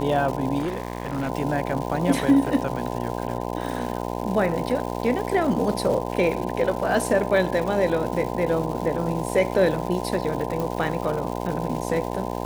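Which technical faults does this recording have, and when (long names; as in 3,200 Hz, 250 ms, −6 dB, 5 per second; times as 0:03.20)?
mains buzz 60 Hz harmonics 17 −29 dBFS
surface crackle 390 per second −31 dBFS
0:00.58–0:01.29: clipping −22 dBFS
0:10.60: click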